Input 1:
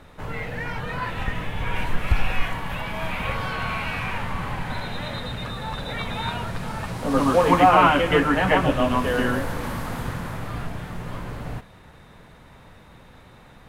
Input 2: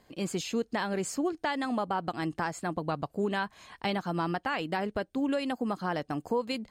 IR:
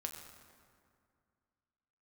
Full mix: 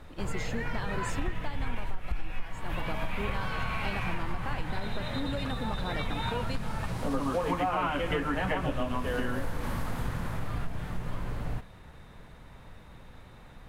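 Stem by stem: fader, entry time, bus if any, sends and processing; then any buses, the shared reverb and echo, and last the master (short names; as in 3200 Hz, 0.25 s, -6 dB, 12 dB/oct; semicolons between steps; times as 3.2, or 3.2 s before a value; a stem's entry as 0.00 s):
-4.5 dB, 0.00 s, no send, dry
-5.5 dB, 0.00 s, no send, dry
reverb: off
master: low shelf 63 Hz +10 dB; compressor 6:1, threshold -26 dBFS, peak gain reduction 16.5 dB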